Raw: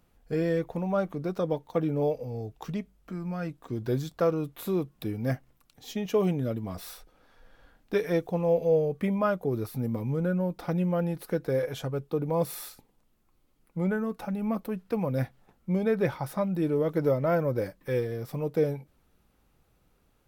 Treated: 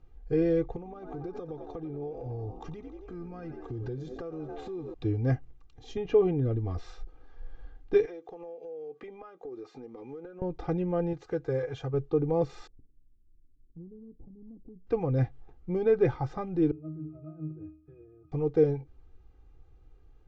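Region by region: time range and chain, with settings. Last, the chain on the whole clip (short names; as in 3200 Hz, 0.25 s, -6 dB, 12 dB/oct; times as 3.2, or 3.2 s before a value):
0.76–4.94 frequency-shifting echo 91 ms, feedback 63%, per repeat +66 Hz, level -14 dB + compressor 16:1, threshold -35 dBFS
5.97–6.59 air absorption 190 m + upward compressor, threshold -28 dBFS
8.05–10.42 Bessel high-pass 380 Hz, order 4 + compressor 10:1, threshold -40 dBFS
11.13–11.94 HPF 97 Hz 6 dB/oct + bell 280 Hz -5.5 dB 1.8 oct + decimation joined by straight lines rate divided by 2×
12.67–14.87 ladder low-pass 320 Hz, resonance 30% + compressor 3:1, threshold -42 dBFS
16.71–18.32 negative-ratio compressor -27 dBFS, ratio -0.5 + octave resonator D#, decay 0.45 s
whole clip: elliptic low-pass 7000 Hz, stop band 40 dB; tilt -3 dB/oct; comb 2.5 ms, depth 77%; gain -3.5 dB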